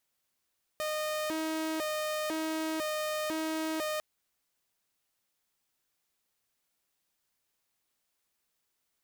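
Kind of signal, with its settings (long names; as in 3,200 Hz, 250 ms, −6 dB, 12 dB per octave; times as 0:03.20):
siren hi-lo 317–614 Hz 1 per second saw −28.5 dBFS 3.20 s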